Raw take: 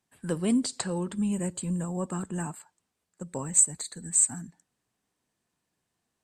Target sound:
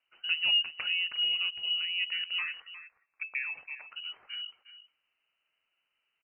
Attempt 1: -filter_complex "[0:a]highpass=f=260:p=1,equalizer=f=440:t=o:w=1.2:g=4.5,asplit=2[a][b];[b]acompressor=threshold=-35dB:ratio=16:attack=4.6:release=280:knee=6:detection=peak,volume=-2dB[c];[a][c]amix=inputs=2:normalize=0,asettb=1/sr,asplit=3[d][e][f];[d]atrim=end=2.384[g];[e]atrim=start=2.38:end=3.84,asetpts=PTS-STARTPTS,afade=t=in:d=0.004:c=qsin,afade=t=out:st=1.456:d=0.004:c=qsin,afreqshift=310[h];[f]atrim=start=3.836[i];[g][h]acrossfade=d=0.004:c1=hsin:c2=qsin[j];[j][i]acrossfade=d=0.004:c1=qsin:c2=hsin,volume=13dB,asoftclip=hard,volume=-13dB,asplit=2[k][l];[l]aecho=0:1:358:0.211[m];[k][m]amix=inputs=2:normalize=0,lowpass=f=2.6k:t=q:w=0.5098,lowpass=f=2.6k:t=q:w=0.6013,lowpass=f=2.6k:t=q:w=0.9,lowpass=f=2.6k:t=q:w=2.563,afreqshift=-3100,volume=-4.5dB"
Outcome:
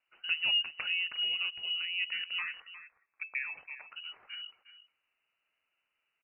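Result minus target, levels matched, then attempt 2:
250 Hz band +3.0 dB
-filter_complex "[0:a]equalizer=f=440:t=o:w=1.2:g=4.5,asplit=2[a][b];[b]acompressor=threshold=-35dB:ratio=16:attack=4.6:release=280:knee=6:detection=peak,volume=-2dB[c];[a][c]amix=inputs=2:normalize=0,asettb=1/sr,asplit=3[d][e][f];[d]atrim=end=2.384[g];[e]atrim=start=2.38:end=3.84,asetpts=PTS-STARTPTS,afade=t=in:d=0.004:c=qsin,afade=t=out:st=1.456:d=0.004:c=qsin,afreqshift=310[h];[f]atrim=start=3.836[i];[g][h]acrossfade=d=0.004:c1=hsin:c2=qsin[j];[j][i]acrossfade=d=0.004:c1=qsin:c2=hsin,volume=13dB,asoftclip=hard,volume=-13dB,asplit=2[k][l];[l]aecho=0:1:358:0.211[m];[k][m]amix=inputs=2:normalize=0,lowpass=f=2.6k:t=q:w=0.5098,lowpass=f=2.6k:t=q:w=0.6013,lowpass=f=2.6k:t=q:w=0.9,lowpass=f=2.6k:t=q:w=2.563,afreqshift=-3100,volume=-4.5dB"

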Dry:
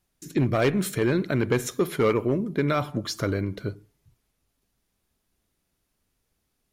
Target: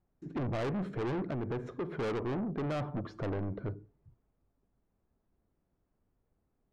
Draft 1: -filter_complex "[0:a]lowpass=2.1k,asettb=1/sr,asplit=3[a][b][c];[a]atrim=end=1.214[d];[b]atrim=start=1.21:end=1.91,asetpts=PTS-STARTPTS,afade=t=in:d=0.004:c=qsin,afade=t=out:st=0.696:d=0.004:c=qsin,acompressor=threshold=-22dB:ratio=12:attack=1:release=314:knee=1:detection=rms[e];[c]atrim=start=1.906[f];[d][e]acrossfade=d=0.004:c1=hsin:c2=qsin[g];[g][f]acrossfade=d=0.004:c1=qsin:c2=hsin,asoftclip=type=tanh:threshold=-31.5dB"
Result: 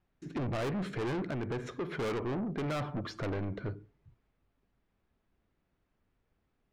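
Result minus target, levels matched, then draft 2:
2000 Hz band +3.0 dB
-filter_complex "[0:a]lowpass=960,asettb=1/sr,asplit=3[a][b][c];[a]atrim=end=1.214[d];[b]atrim=start=1.21:end=1.91,asetpts=PTS-STARTPTS,afade=t=in:d=0.004:c=qsin,afade=t=out:st=0.696:d=0.004:c=qsin,acompressor=threshold=-22dB:ratio=12:attack=1:release=314:knee=1:detection=rms[e];[c]atrim=start=1.906[f];[d][e]acrossfade=d=0.004:c1=hsin:c2=qsin[g];[g][f]acrossfade=d=0.004:c1=qsin:c2=hsin,asoftclip=type=tanh:threshold=-31.5dB"

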